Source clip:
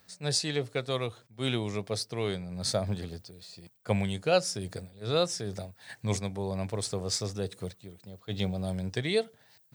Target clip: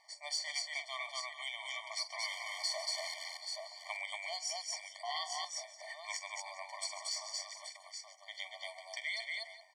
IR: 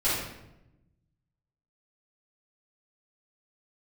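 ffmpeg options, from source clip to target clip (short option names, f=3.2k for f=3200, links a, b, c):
-filter_complex "[0:a]asettb=1/sr,asplit=3[a][b][c];[a]atrim=end=2.234[d];[b]atrim=start=2.23:end=3.14,asetpts=PTS-STARTPTS,afade=t=in:d=0.004:c=qsin,afade=t=out:st=0.906:d=0.004:c=qsin,aeval=exprs='val(0)+0.5*0.0316*sgn(val(0))':c=same[e];[c]atrim=start=3.136[f];[d][e]acrossfade=d=0.004:c1=hsin:c2=qsin[g];[g][f]acrossfade=d=0.004:c1=qsin:c2=hsin,lowpass=7.5k,aecho=1:1:46|131|231|404|826:0.188|0.112|0.668|0.106|0.251,acrossover=split=1200|2500[h][i][j];[h]acompressor=threshold=-41dB:ratio=4[k];[i]acompressor=threshold=-46dB:ratio=4[l];[j]acompressor=threshold=-35dB:ratio=4[m];[k][l][m]amix=inputs=3:normalize=0,equalizer=f=3.4k:w=6.3:g=-11.5,asplit=2[n][o];[o]highpass=f=720:p=1,volume=12dB,asoftclip=type=tanh:threshold=-15dB[p];[n][p]amix=inputs=2:normalize=0,lowpass=f=4.9k:p=1,volume=-6dB,asubboost=boost=6:cutoff=240,asettb=1/sr,asplit=3[q][r][s];[q]atrim=end=5.034[t];[r]atrim=start=5.03:end=5.45,asetpts=PTS-STARTPTS,afade=t=in:d=0.004:c=qsin,afade=t=out:st=0.416:d=0.004:c=qsin,aeval=exprs='val(0)*sin(2*PI*600*n/s)':c=same[u];[s]atrim=start=5.446[v];[t][u]acrossfade=d=0.004:c1=hsin:c2=qsin[w];[w][v]acrossfade=d=0.004:c1=qsin:c2=hsin,afftfilt=real='re*eq(mod(floor(b*sr/1024/600),2),1)':imag='im*eq(mod(floor(b*sr/1024/600),2),1)':win_size=1024:overlap=0.75,volume=-1dB"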